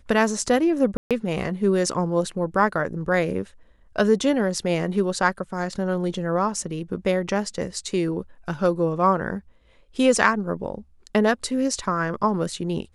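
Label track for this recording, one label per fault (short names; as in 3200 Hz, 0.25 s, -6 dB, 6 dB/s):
0.970000	1.110000	gap 0.137 s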